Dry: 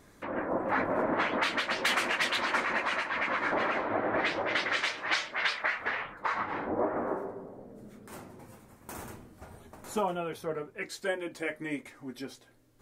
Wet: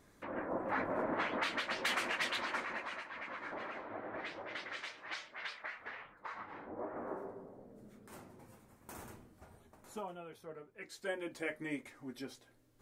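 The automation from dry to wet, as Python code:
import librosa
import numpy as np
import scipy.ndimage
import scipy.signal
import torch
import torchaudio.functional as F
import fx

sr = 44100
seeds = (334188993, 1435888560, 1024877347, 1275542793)

y = fx.gain(x, sr, db=fx.line((2.3, -7.0), (3.1, -14.5), (6.73, -14.5), (7.27, -7.5), (9.2, -7.5), (10.13, -14.5), (10.66, -14.5), (11.24, -5.0)))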